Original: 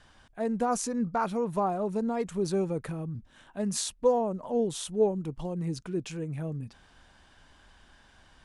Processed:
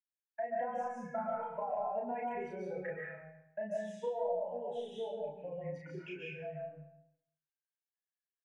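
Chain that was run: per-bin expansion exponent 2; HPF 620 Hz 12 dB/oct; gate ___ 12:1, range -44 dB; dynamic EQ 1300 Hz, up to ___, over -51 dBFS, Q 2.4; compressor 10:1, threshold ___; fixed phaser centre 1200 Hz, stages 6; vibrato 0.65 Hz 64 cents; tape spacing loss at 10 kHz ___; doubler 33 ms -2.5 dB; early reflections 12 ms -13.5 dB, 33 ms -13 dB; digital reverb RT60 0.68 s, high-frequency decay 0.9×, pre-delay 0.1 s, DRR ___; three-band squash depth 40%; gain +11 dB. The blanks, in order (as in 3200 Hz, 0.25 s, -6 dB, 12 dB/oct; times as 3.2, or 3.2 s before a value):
-59 dBFS, +5 dB, -45 dBFS, 40 dB, -3 dB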